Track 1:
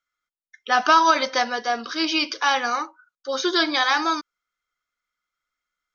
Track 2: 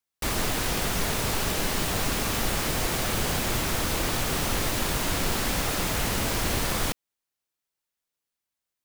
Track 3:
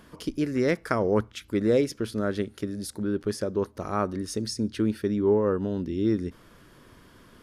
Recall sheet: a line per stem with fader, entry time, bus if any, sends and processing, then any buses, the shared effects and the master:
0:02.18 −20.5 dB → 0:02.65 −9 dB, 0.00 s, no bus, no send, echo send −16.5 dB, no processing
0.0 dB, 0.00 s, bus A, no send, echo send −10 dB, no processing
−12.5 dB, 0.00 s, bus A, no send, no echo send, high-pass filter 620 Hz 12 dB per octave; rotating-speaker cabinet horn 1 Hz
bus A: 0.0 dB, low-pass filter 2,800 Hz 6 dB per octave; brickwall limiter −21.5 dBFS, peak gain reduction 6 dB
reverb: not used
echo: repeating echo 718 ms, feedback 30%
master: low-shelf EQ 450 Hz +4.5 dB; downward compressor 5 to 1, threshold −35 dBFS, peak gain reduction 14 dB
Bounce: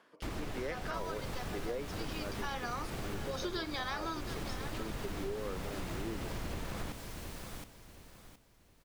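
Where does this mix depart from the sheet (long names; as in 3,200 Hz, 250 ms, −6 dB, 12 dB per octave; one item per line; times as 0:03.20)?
stem 2 0.0 dB → −11.0 dB
stem 3 −12.5 dB → −3.0 dB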